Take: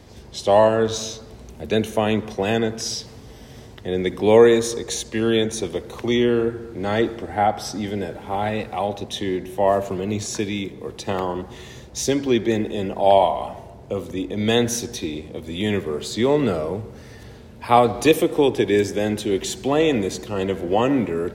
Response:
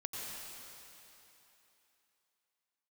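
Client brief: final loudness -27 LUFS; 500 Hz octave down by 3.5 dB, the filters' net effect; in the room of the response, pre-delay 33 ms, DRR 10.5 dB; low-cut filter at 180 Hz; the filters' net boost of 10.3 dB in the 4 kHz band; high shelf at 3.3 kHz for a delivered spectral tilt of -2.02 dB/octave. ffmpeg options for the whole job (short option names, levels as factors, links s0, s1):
-filter_complex "[0:a]highpass=180,equalizer=f=500:t=o:g=-4.5,highshelf=f=3300:g=7.5,equalizer=f=4000:t=o:g=7.5,asplit=2[s0][s1];[1:a]atrim=start_sample=2205,adelay=33[s2];[s1][s2]afir=irnorm=-1:irlink=0,volume=0.266[s3];[s0][s3]amix=inputs=2:normalize=0,volume=0.473"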